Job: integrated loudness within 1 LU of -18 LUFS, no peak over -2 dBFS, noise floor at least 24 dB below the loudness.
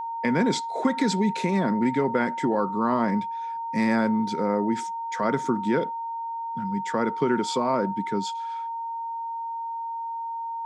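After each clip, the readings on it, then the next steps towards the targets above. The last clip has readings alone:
steady tone 920 Hz; tone level -29 dBFS; loudness -26.0 LUFS; peak level -10.5 dBFS; loudness target -18.0 LUFS
-> band-stop 920 Hz, Q 30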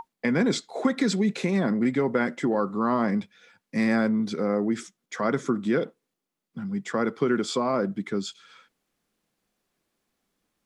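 steady tone not found; loudness -26.0 LUFS; peak level -10.5 dBFS; loudness target -18.0 LUFS
-> trim +8 dB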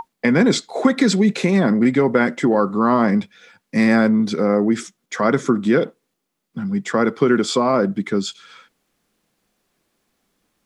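loudness -18.0 LUFS; peak level -2.5 dBFS; noise floor -75 dBFS

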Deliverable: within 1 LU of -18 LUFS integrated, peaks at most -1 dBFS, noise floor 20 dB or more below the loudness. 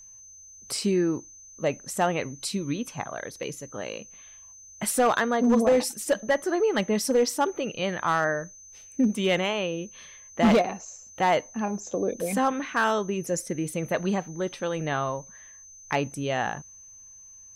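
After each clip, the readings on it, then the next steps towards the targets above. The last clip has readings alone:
clipped samples 0.7%; clipping level -15.0 dBFS; steady tone 6.2 kHz; tone level -46 dBFS; loudness -26.5 LUFS; peak level -15.0 dBFS; loudness target -18.0 LUFS
-> clip repair -15 dBFS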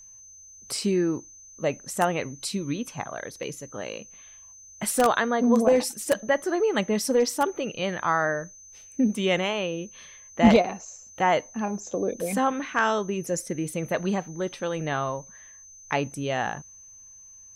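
clipped samples 0.0%; steady tone 6.2 kHz; tone level -46 dBFS
-> band-stop 6.2 kHz, Q 30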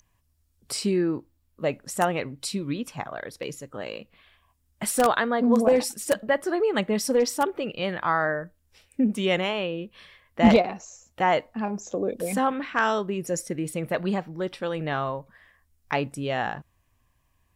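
steady tone not found; loudness -26.0 LUFS; peak level -6.0 dBFS; loudness target -18.0 LUFS
-> trim +8 dB; peak limiter -1 dBFS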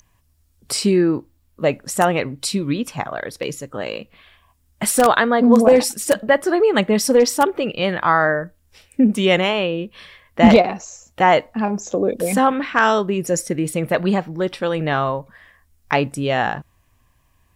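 loudness -18.5 LUFS; peak level -1.0 dBFS; noise floor -61 dBFS

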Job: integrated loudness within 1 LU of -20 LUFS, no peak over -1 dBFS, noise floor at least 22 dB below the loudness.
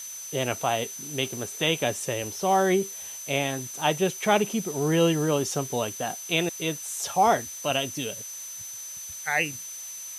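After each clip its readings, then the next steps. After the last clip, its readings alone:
steady tone 6.1 kHz; tone level -37 dBFS; noise floor -39 dBFS; noise floor target -49 dBFS; loudness -26.5 LUFS; peak level -8.5 dBFS; loudness target -20.0 LUFS
-> band-stop 6.1 kHz, Q 30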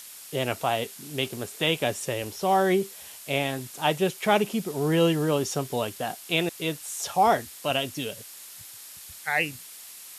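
steady tone not found; noise floor -45 dBFS; noise floor target -49 dBFS
-> noise reduction 6 dB, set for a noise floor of -45 dBFS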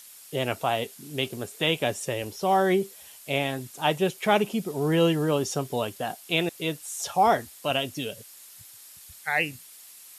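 noise floor -49 dBFS; loudness -26.5 LUFS; peak level -8.5 dBFS; loudness target -20.0 LUFS
-> trim +6.5 dB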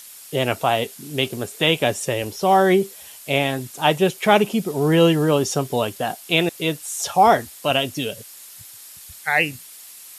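loudness -20.0 LUFS; peak level -2.0 dBFS; noise floor -42 dBFS

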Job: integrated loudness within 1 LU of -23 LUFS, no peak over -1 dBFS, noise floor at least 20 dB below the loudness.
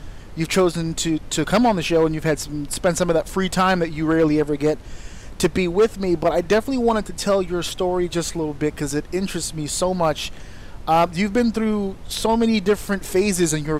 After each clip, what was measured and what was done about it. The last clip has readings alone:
clipped samples 0.8%; clipping level -10.5 dBFS; noise floor -37 dBFS; noise floor target -41 dBFS; loudness -21.0 LUFS; peak level -10.5 dBFS; loudness target -23.0 LUFS
-> clip repair -10.5 dBFS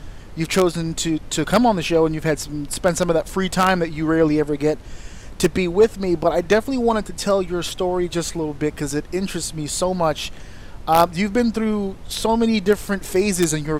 clipped samples 0.0%; noise floor -37 dBFS; noise floor target -41 dBFS
-> noise print and reduce 6 dB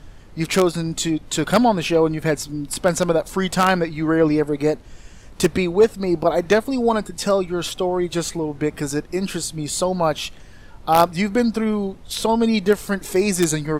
noise floor -42 dBFS; loudness -20.5 LUFS; peak level -1.5 dBFS; loudness target -23.0 LUFS
-> trim -2.5 dB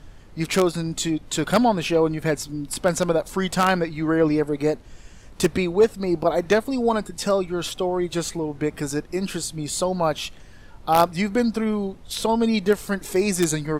loudness -23.0 LUFS; peak level -4.0 dBFS; noise floor -45 dBFS

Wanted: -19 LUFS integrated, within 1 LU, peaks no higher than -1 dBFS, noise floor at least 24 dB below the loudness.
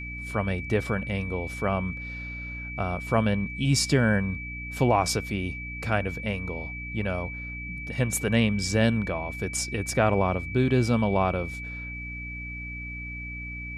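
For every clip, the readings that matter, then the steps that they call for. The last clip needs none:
hum 60 Hz; highest harmonic 300 Hz; hum level -37 dBFS; steady tone 2.3 kHz; tone level -36 dBFS; loudness -27.5 LUFS; peak level -9.0 dBFS; loudness target -19.0 LUFS
-> hum notches 60/120/180/240/300 Hz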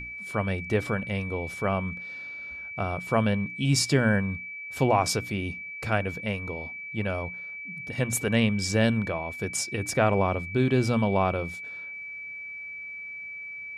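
hum not found; steady tone 2.3 kHz; tone level -36 dBFS
-> band-stop 2.3 kHz, Q 30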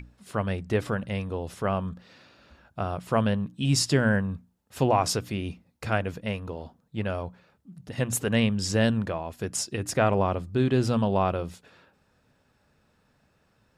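steady tone not found; loudness -27.0 LUFS; peak level -10.0 dBFS; loudness target -19.0 LUFS
-> trim +8 dB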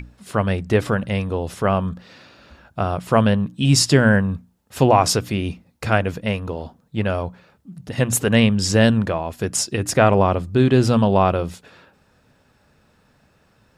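loudness -19.0 LUFS; peak level -2.0 dBFS; noise floor -60 dBFS

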